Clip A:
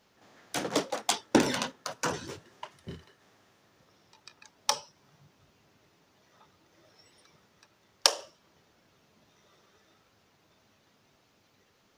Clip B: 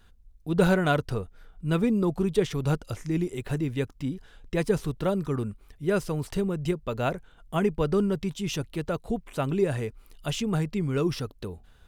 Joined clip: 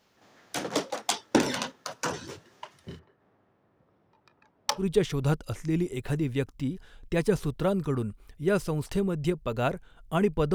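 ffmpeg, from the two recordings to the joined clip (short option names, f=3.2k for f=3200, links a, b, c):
-filter_complex "[0:a]asettb=1/sr,asplit=3[a][b][c];[a]atrim=end=2.994[d];[b]atrim=start=2.99:end=4.86,asetpts=PTS-STARTPTS,afade=t=in:d=0.004:c=qsin,afade=t=out:st=1.866:d=0.004:c=qsin,adynamicsmooth=sensitivity=4:basefreq=1.3k[e];[c]atrim=start=4.856[f];[d][e]acrossfade=d=0.004:c1=hsin:c2=qsin[g];[g][f]acrossfade=d=0.004:c1=qsin:c2=hsin,apad=whole_dur=10.54,atrim=end=10.54,atrim=end=4.86,asetpts=PTS-STARTPTS[h];[1:a]atrim=start=2.17:end=7.95,asetpts=PTS-STARTPTS[i];[h][i]acrossfade=d=0.1:c1=tri:c2=tri"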